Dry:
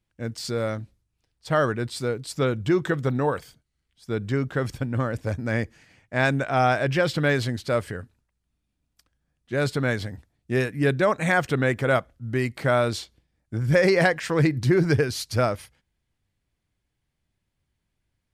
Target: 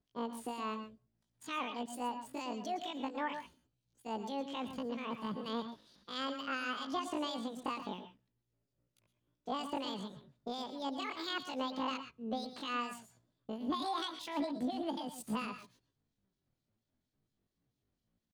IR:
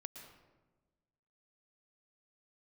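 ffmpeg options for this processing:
-filter_complex "[0:a]bass=frequency=250:gain=0,treble=frequency=4000:gain=-13,acompressor=threshold=-31dB:ratio=3,acrossover=split=1300[link_01][link_02];[link_01]aeval=exprs='val(0)*(1-0.7/2+0.7/2*cos(2*PI*4.3*n/s))':channel_layout=same[link_03];[link_02]aeval=exprs='val(0)*(1-0.7/2-0.7/2*cos(2*PI*4.3*n/s))':channel_layout=same[link_04];[link_03][link_04]amix=inputs=2:normalize=0,asetrate=88200,aresample=44100,atempo=0.5[link_05];[1:a]atrim=start_sample=2205,atrim=end_sample=6174[link_06];[link_05][link_06]afir=irnorm=-1:irlink=0,volume=2dB"

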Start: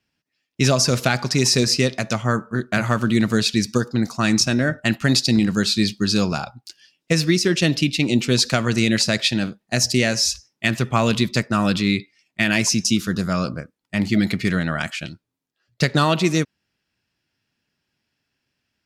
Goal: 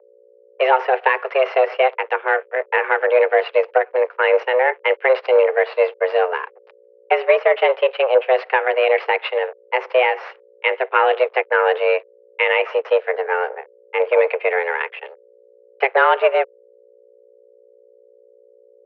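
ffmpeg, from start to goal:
ffmpeg -i in.wav -af "aeval=exprs='0.631*(cos(1*acos(clip(val(0)/0.631,-1,1)))-cos(1*PI/2))+0.0891*(cos(5*acos(clip(val(0)/0.631,-1,1)))-cos(5*PI/2))+0.0794*(cos(7*acos(clip(val(0)/0.631,-1,1)))-cos(7*PI/2))+0.0355*(cos(8*acos(clip(val(0)/0.631,-1,1)))-cos(8*PI/2))':channel_layout=same,aeval=exprs='sgn(val(0))*max(abs(val(0))-0.00841,0)':channel_layout=same,aeval=exprs='val(0)+0.00631*(sin(2*PI*60*n/s)+sin(2*PI*2*60*n/s)/2+sin(2*PI*3*60*n/s)/3+sin(2*PI*4*60*n/s)/4+sin(2*PI*5*60*n/s)/5)':channel_layout=same,highpass=frequency=190:width_type=q:width=0.5412,highpass=frequency=190:width_type=q:width=1.307,lowpass=frequency=2300:width_type=q:width=0.5176,lowpass=frequency=2300:width_type=q:width=0.7071,lowpass=frequency=2300:width_type=q:width=1.932,afreqshift=260,volume=4dB" out.wav

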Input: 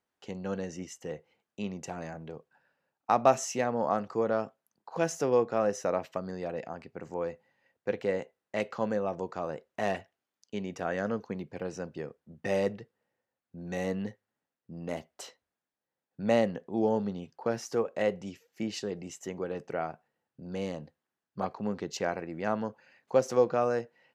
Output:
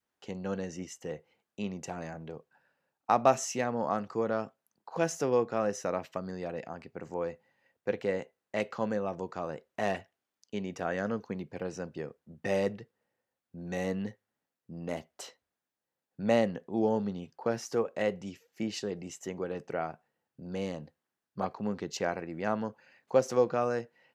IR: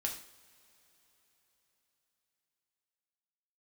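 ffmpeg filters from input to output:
-af "adynamicequalizer=threshold=0.01:dfrequency=600:dqfactor=0.99:tfrequency=600:tqfactor=0.99:attack=5:release=100:ratio=0.375:range=2:mode=cutabove:tftype=bell"

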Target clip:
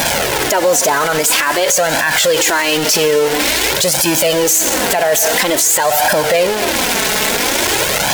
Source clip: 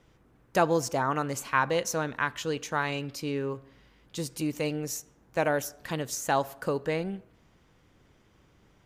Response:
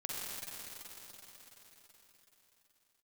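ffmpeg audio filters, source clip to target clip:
-filter_complex "[0:a]aeval=exprs='val(0)+0.5*0.0316*sgn(val(0))':channel_layout=same,bass=frequency=250:gain=-12,treble=frequency=4000:gain=3,acompressor=threshold=-32dB:ratio=6,asplit=2[link_01][link_02];[1:a]atrim=start_sample=2205,afade=type=out:start_time=0.35:duration=0.01,atrim=end_sample=15876[link_03];[link_02][link_03]afir=irnorm=-1:irlink=0,volume=-14.5dB[link_04];[link_01][link_04]amix=inputs=2:normalize=0,flanger=delay=1.3:depth=3.8:regen=-4:speed=0.45:shape=sinusoidal,lowshelf=frequency=110:gain=-8,bandreject=frequency=1100:width=6,acrusher=bits=7:mix=0:aa=0.5,asetrate=48000,aresample=44100,alimiter=level_in=34dB:limit=-1dB:release=50:level=0:latency=1,volume=-3.5dB"

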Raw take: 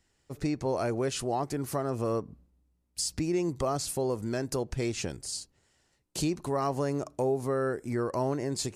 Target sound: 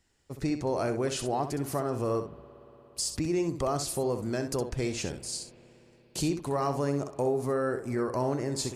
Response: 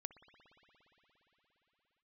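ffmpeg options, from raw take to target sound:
-filter_complex "[0:a]asplit=2[link_01][link_02];[1:a]atrim=start_sample=2205,adelay=64[link_03];[link_02][link_03]afir=irnorm=-1:irlink=0,volume=-3.5dB[link_04];[link_01][link_04]amix=inputs=2:normalize=0"

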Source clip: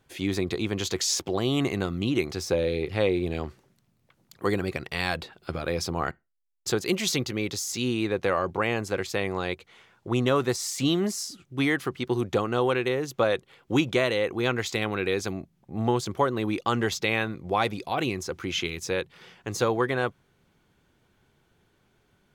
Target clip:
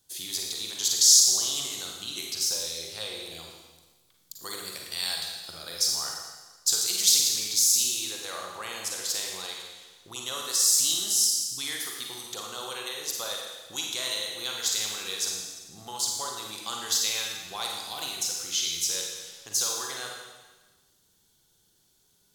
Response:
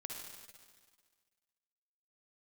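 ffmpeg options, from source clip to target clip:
-filter_complex "[0:a]acrossover=split=660[link_01][link_02];[link_01]acompressor=threshold=-42dB:ratio=4[link_03];[link_03][link_02]amix=inputs=2:normalize=0,aexciter=amount=11.2:drive=2.6:freq=3500[link_04];[1:a]atrim=start_sample=2205,asetrate=57330,aresample=44100[link_05];[link_04][link_05]afir=irnorm=-1:irlink=0,volume=-3.5dB"

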